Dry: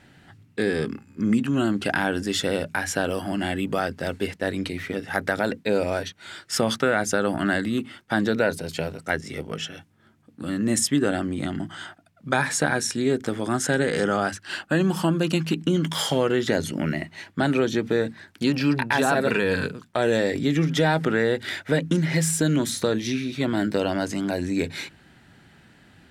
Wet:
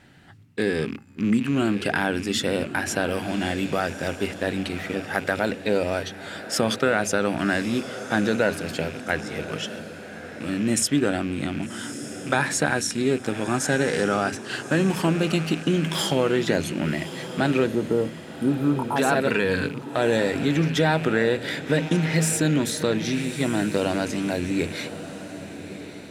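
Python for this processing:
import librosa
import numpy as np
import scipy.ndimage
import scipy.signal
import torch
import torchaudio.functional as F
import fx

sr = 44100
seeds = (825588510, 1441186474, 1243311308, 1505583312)

y = fx.rattle_buzz(x, sr, strikes_db=-36.0, level_db=-28.0)
y = fx.spec_erase(y, sr, start_s=17.66, length_s=1.3, low_hz=1400.0, high_hz=8200.0)
y = fx.echo_diffused(y, sr, ms=1160, feedback_pct=44, wet_db=-12.0)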